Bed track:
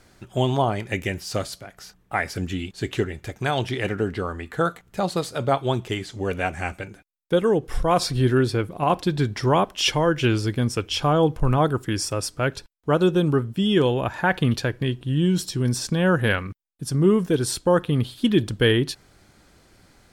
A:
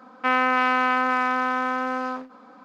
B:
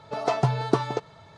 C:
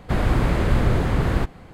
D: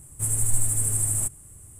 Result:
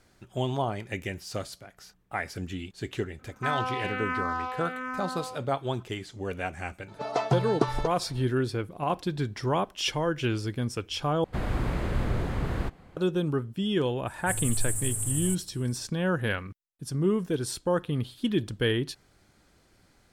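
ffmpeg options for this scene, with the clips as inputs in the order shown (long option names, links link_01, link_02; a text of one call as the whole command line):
ffmpeg -i bed.wav -i cue0.wav -i cue1.wav -i cue2.wav -i cue3.wav -filter_complex "[0:a]volume=-7.5dB[link_01];[1:a]asplit=2[link_02][link_03];[link_03]afreqshift=-1.3[link_04];[link_02][link_04]amix=inputs=2:normalize=1[link_05];[link_01]asplit=2[link_06][link_07];[link_06]atrim=end=11.244[link_08];[3:a]atrim=end=1.73,asetpts=PTS-STARTPTS,volume=-9dB[link_09];[link_07]atrim=start=12.966[link_10];[link_05]atrim=end=2.64,asetpts=PTS-STARTPTS,volume=-7dB,afade=type=in:duration=0.004:curve=hsin,afade=type=out:start_time=2.636:duration=0.004:curve=hsin,adelay=3190[link_11];[2:a]atrim=end=1.37,asetpts=PTS-STARTPTS,volume=-3dB,afade=type=in:duration=0.004:curve=hsin,afade=type=out:start_time=1.366:duration=0.004:curve=hsin,adelay=6880[link_12];[4:a]atrim=end=1.79,asetpts=PTS-STARTPTS,volume=-6.5dB,afade=type=in:duration=0.004:curve=hsin,afade=type=out:start_time=1.786:duration=0.004:curve=hsin,adelay=14070[link_13];[link_08][link_09]acrossfade=duration=0.004:curve1=hsin:curve2=hsin[link_14];[link_14][link_10]acrossfade=duration=0.004:curve1=hsin:curve2=hsin[link_15];[link_15][link_11][link_12][link_13]amix=inputs=4:normalize=0" out.wav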